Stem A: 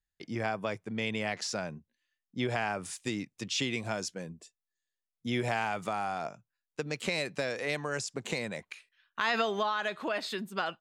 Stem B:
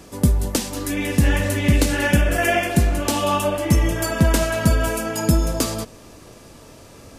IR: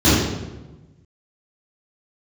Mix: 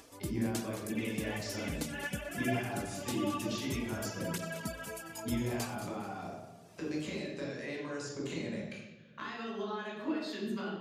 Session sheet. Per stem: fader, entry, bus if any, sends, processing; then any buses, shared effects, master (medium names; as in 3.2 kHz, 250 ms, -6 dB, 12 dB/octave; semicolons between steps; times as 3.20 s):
-5.5 dB, 0.00 s, send -18 dB, no echo send, reverb removal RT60 0.53 s; bass shelf 330 Hz -6 dB; compression 6:1, threshold -40 dBFS, peak gain reduction 14.5 dB
-13.5 dB, 0.00 s, no send, echo send -11 dB, reverb removal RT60 0.53 s; bass shelf 260 Hz -11.5 dB; cancelling through-zero flanger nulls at 0.57 Hz, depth 5.7 ms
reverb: on, RT60 1.1 s, pre-delay 3 ms
echo: feedback delay 218 ms, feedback 32%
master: upward compressor, threshold -50 dBFS